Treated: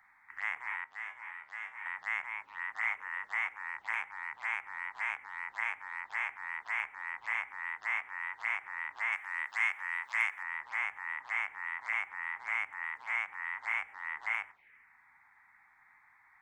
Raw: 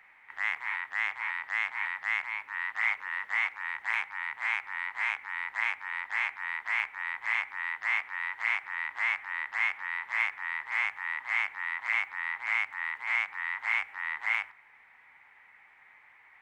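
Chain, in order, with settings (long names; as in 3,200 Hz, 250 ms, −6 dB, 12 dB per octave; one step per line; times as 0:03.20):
phaser swept by the level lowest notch 440 Hz, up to 4,300 Hz, full sweep at −30 dBFS
0:00.84–0:01.86: tuned comb filter 77 Hz, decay 0.31 s, harmonics all, mix 80%
0:09.12–0:10.43: spectral tilt +3 dB per octave
level −2 dB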